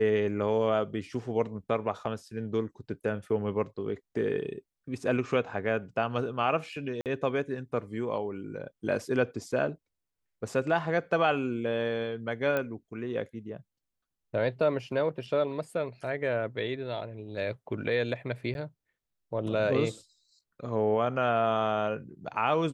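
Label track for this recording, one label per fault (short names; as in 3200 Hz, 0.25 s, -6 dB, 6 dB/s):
7.010000	7.060000	gap 48 ms
12.570000	12.570000	pop -17 dBFS
18.540000	18.550000	gap 11 ms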